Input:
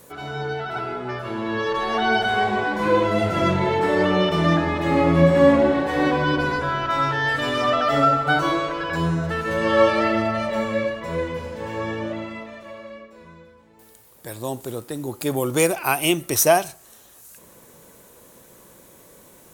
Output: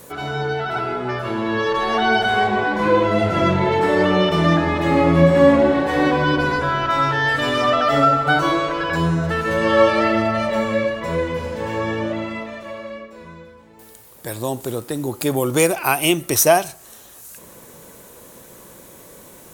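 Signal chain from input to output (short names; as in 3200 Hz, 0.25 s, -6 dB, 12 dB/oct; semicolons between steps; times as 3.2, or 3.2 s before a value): 2.47–3.72 high shelf 7900 Hz -9 dB; in parallel at -2 dB: compressor, threshold -28 dBFS, peak gain reduction 17 dB; on the sum: gain +1 dB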